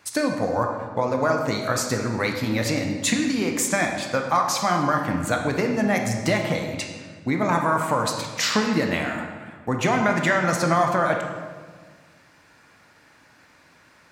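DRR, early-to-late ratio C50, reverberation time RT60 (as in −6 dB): 2.5 dB, 4.5 dB, 1.6 s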